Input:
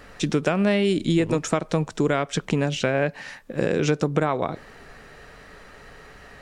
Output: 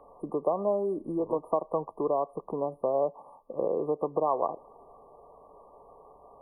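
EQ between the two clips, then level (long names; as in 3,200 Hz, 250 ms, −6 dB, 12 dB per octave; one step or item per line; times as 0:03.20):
linear-phase brick-wall band-stop 1,200–9,000 Hz
three-way crossover with the lows and the highs turned down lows −18 dB, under 430 Hz, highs −20 dB, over 2,900 Hz
dynamic equaliser 110 Hz, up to −5 dB, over −50 dBFS, Q 1.2
0.0 dB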